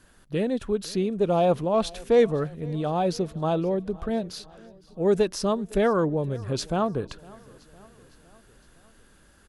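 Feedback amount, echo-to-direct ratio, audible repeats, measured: 58%, -21.5 dB, 3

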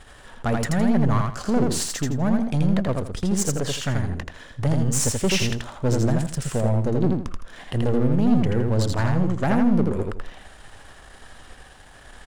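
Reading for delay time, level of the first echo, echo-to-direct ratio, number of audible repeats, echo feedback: 82 ms, -3.0 dB, -2.5 dB, 3, 25%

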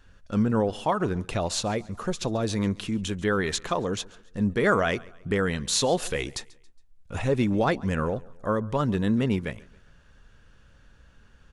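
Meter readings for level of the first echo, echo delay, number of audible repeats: -23.0 dB, 138 ms, 2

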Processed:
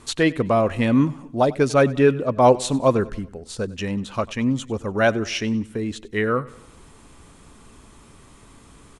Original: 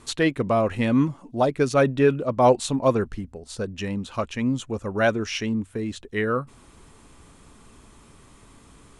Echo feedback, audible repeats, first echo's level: 51%, 3, -21.0 dB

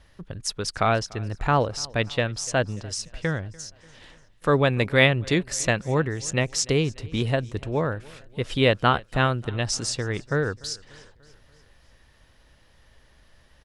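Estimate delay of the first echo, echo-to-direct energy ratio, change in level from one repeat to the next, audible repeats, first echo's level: 293 ms, -22.0 dB, -5.0 dB, 3, -23.5 dB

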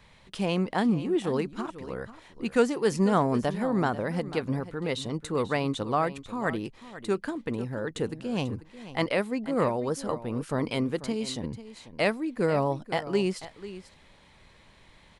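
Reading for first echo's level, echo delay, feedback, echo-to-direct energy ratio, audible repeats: -14.5 dB, 491 ms, no regular repeats, -14.5 dB, 1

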